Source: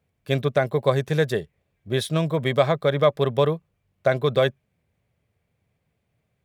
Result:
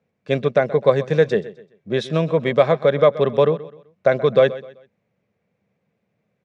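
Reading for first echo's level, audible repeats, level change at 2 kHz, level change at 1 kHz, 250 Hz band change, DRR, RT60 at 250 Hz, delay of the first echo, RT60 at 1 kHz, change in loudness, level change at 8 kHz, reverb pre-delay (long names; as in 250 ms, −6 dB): −17.0 dB, 2, +2.0 dB, +2.5 dB, +2.5 dB, no reverb audible, no reverb audible, 128 ms, no reverb audible, +4.0 dB, can't be measured, no reverb audible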